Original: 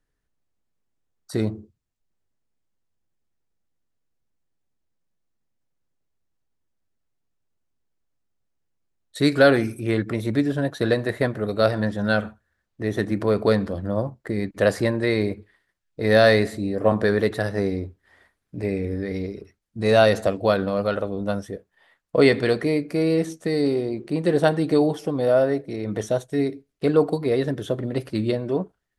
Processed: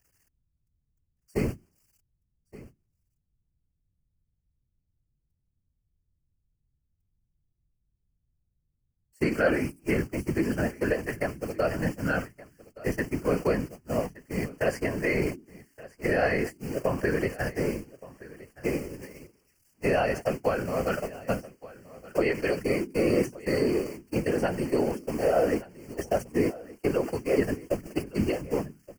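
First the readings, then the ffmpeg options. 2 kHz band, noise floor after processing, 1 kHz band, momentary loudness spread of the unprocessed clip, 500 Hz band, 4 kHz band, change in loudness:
−5.0 dB, −78 dBFS, −5.5 dB, 12 LU, −6.5 dB, −11.5 dB, −6.0 dB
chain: -filter_complex "[0:a]aeval=exprs='val(0)+0.5*0.0316*sgn(val(0))':channel_layout=same,agate=range=-34dB:threshold=-22dB:ratio=16:detection=peak,acrossover=split=3700[link_01][link_02];[link_02]acompressor=threshold=-48dB:ratio=4:attack=1:release=60[link_03];[link_01][link_03]amix=inputs=2:normalize=0,highshelf=frequency=5900:gain=7.5,bandreject=frequency=60:width_type=h:width=6,bandreject=frequency=120:width_type=h:width=6,bandreject=frequency=180:width_type=h:width=6,bandreject=frequency=240:width_type=h:width=6,bandreject=frequency=300:width_type=h:width=6,acrossover=split=630|2200[link_04][link_05][link_06];[link_06]acontrast=71[link_07];[link_04][link_05][link_07]amix=inputs=3:normalize=0,alimiter=limit=-12.5dB:level=0:latency=1:release=386,afftfilt=real='hypot(re,im)*cos(2*PI*random(0))':imag='hypot(re,im)*sin(2*PI*random(1))':win_size=512:overlap=0.75,asuperstop=centerf=3700:order=8:qfactor=2.4,asplit=2[link_08][link_09];[link_09]aecho=0:1:1172:0.112[link_10];[link_08][link_10]amix=inputs=2:normalize=0,volume=3dB"

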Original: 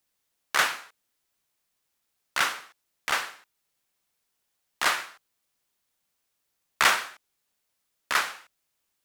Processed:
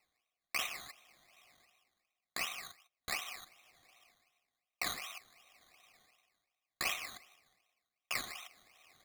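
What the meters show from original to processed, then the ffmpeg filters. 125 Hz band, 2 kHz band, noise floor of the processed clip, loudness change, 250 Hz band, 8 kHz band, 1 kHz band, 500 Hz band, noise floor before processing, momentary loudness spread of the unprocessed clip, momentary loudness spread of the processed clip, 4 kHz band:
−6.5 dB, −14.0 dB, below −85 dBFS, −13.5 dB, −9.0 dB, −10.0 dB, −17.0 dB, −13.0 dB, −78 dBFS, 18 LU, 16 LU, −11.0 dB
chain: -filter_complex "[0:a]acrossover=split=420|2900[link_01][link_02][link_03];[link_02]acompressor=threshold=-33dB:ratio=5[link_04];[link_01][link_04][link_03]amix=inputs=3:normalize=0,asplit=3[link_05][link_06][link_07];[link_05]bandpass=frequency=730:width_type=q:width=8,volume=0dB[link_08];[link_06]bandpass=frequency=1090:width_type=q:width=8,volume=-6dB[link_09];[link_07]bandpass=frequency=2440:width_type=q:width=8,volume=-9dB[link_10];[link_08][link_09][link_10]amix=inputs=3:normalize=0,areverse,acompressor=mode=upward:threshold=-48dB:ratio=2.5,areverse,equalizer=frequency=1200:width_type=o:width=0.41:gain=9,bandreject=frequency=2300:width=22,aecho=1:1:153:0.119,acrusher=samples=13:mix=1:aa=0.000001:lfo=1:lforange=7.8:lforate=2.7,highshelf=frequency=1800:width_type=q:width=3:gain=6.5,volume=-1dB"

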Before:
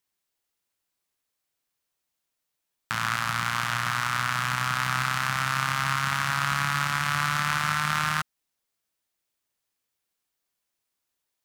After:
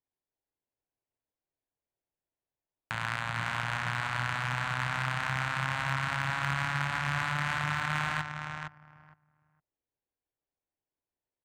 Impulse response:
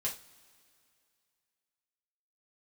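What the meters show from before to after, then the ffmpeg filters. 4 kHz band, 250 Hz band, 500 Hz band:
−7.5 dB, −3.0 dB, 0.0 dB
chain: -filter_complex "[0:a]acrossover=split=3500[link_01][link_02];[link_02]acompressor=threshold=-48dB:ratio=4:attack=1:release=60[link_03];[link_01][link_03]amix=inputs=2:normalize=0,equalizer=frequency=200:width_type=o:width=0.33:gain=-8,equalizer=frequency=1250:width_type=o:width=0.33:gain=-10,equalizer=frequency=5000:width_type=o:width=0.33:gain=-7,asplit=2[link_04][link_05];[link_05]adelay=461,lowpass=frequency=3800:poles=1,volume=-5.5dB,asplit=2[link_06][link_07];[link_07]adelay=461,lowpass=frequency=3800:poles=1,volume=0.18,asplit=2[link_08][link_09];[link_09]adelay=461,lowpass=frequency=3800:poles=1,volume=0.18[link_10];[link_06][link_08][link_10]amix=inputs=3:normalize=0[link_11];[link_04][link_11]amix=inputs=2:normalize=0,adynamicsmooth=sensitivity=3.5:basefreq=1200,equalizer=frequency=14000:width_type=o:width=0.6:gain=-5.5,volume=-2dB"

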